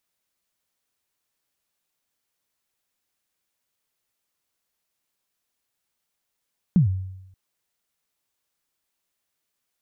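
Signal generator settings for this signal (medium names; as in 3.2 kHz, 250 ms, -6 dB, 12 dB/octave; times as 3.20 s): kick drum length 0.58 s, from 200 Hz, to 94 Hz, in 118 ms, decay 0.89 s, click off, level -11 dB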